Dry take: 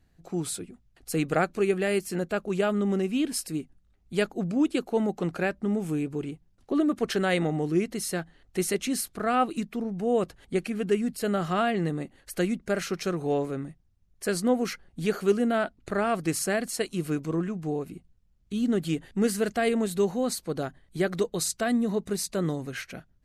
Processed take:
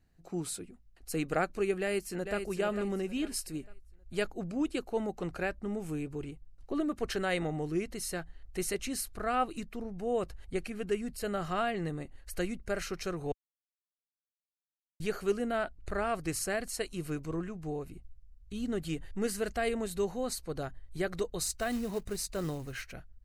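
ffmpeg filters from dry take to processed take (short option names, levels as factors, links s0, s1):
-filter_complex "[0:a]asplit=2[s0][s1];[s1]afade=t=in:st=1.8:d=0.01,afade=t=out:st=2.43:d=0.01,aecho=0:1:450|900|1350|1800:0.446684|0.156339|0.0547187|0.0191516[s2];[s0][s2]amix=inputs=2:normalize=0,asettb=1/sr,asplit=3[s3][s4][s5];[s3]atrim=end=21.414[s6];[s4]atrim=start=21.41:end=22.92,asetpts=PTS-STARTPTS,afade=t=in:d=0.004:c=qsin,afade=t=out:st=1.506:d=0.004:c=qsin,acrusher=bits=5:mode=log:mix=0:aa=0.000001[s7];[s5]atrim=start=22.916[s8];[s6][s7]acrossfade=d=0.004:c1=hsin:c2=qsin[s9];[s9][s8]acrossfade=d=0.004:c1=qsin:c2=hsin,asplit=3[s10][s11][s12];[s10]atrim=end=13.32,asetpts=PTS-STARTPTS,afade=t=out:st=13.316:d=0.004:c=hsin[s13];[s11]atrim=start=13.32:end=15,asetpts=PTS-STARTPTS,volume=0[s14];[s12]atrim=start=15,asetpts=PTS-STARTPTS,afade=t=in:d=0.004:c=hsin[s15];[s13][s14][s15]concat=n=3:v=0:a=1,bandreject=f=3400:w=14,asubboost=boost=9.5:cutoff=63,volume=0.562"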